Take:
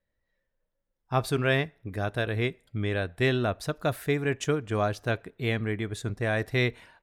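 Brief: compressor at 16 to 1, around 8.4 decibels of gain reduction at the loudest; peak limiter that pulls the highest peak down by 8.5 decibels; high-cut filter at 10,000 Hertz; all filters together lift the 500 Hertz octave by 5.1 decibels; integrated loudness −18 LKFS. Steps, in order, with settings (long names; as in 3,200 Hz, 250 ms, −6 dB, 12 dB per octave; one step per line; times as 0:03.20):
low-pass filter 10,000 Hz
parametric band 500 Hz +6.5 dB
downward compressor 16 to 1, threshold −25 dBFS
level +16.5 dB
brickwall limiter −7.5 dBFS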